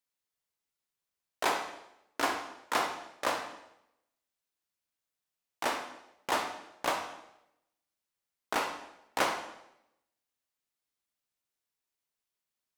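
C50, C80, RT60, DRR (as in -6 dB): 7.0 dB, 9.5 dB, 0.85 s, 4.5 dB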